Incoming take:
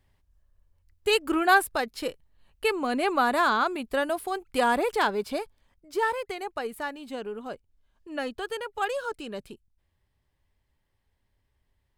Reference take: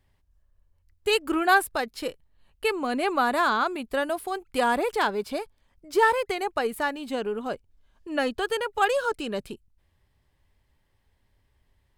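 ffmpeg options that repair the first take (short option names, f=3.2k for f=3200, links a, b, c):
-af "asetnsamples=n=441:p=0,asendcmd='5.74 volume volume 6dB',volume=0dB"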